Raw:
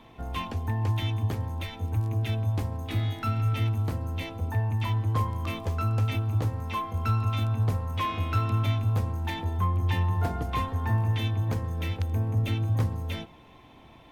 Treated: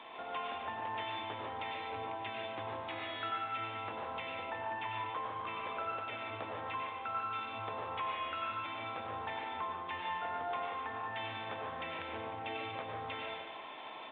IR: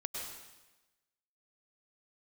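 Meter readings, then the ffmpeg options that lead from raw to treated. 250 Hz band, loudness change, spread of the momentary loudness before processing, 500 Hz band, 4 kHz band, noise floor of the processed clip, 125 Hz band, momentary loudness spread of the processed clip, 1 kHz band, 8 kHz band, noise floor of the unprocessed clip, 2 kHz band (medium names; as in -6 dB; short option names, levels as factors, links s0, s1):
-15.5 dB, -11.0 dB, 6 LU, -3.5 dB, -5.0 dB, -47 dBFS, -30.0 dB, 4 LU, -2.0 dB, no reading, -52 dBFS, -1.5 dB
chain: -filter_complex "[0:a]acrossover=split=3000[s0][s1];[s1]acompressor=threshold=0.00224:ratio=4:attack=1:release=60[s2];[s0][s2]amix=inputs=2:normalize=0,highpass=610,acompressor=threshold=0.00355:ratio=3,asplit=2[s3][s4];[s4]adelay=145.8,volume=0.447,highshelf=f=4000:g=-3.28[s5];[s3][s5]amix=inputs=2:normalize=0[s6];[1:a]atrim=start_sample=2205,asetrate=48510,aresample=44100[s7];[s6][s7]afir=irnorm=-1:irlink=0,volume=2.82" -ar 8000 -c:a pcm_mulaw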